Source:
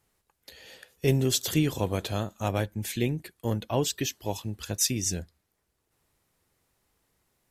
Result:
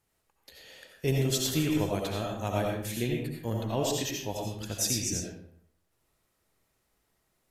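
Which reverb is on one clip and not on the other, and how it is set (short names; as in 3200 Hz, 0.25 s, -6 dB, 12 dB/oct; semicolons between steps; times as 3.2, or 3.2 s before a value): digital reverb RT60 0.67 s, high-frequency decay 0.65×, pre-delay 45 ms, DRR -1 dB; gain -4.5 dB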